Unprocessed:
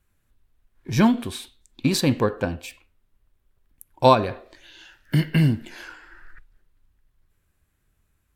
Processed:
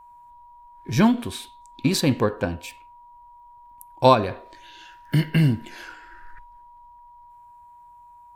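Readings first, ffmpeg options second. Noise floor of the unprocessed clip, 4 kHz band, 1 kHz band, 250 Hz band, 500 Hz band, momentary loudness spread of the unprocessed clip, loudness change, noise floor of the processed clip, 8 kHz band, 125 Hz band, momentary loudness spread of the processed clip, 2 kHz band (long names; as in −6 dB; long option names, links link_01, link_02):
−70 dBFS, 0.0 dB, 0.0 dB, 0.0 dB, 0.0 dB, 21 LU, 0.0 dB, −49 dBFS, 0.0 dB, 0.0 dB, 22 LU, 0.0 dB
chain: -af "aeval=exprs='val(0)+0.00501*sin(2*PI*960*n/s)':channel_layout=same"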